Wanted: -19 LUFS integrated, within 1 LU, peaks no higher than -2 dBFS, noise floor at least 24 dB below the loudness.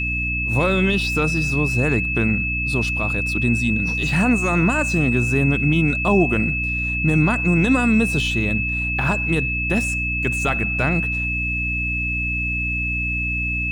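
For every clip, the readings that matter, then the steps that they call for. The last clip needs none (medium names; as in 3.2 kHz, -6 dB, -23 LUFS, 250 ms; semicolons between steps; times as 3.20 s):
hum 60 Hz; highest harmonic 300 Hz; hum level -24 dBFS; steady tone 2.6 kHz; tone level -22 dBFS; loudness -19.5 LUFS; peak level -6.0 dBFS; loudness target -19.0 LUFS
-> hum notches 60/120/180/240/300 Hz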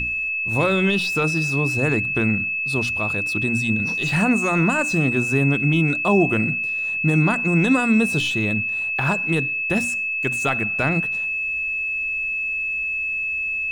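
hum not found; steady tone 2.6 kHz; tone level -22 dBFS
-> band-stop 2.6 kHz, Q 30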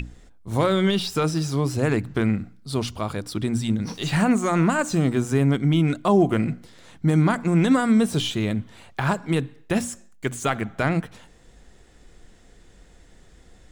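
steady tone not found; loudness -23.0 LUFS; peak level -7.5 dBFS; loudness target -19.0 LUFS
-> trim +4 dB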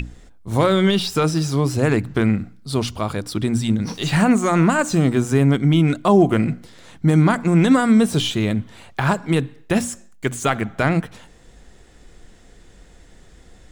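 loudness -19.0 LUFS; peak level -3.5 dBFS; noise floor -48 dBFS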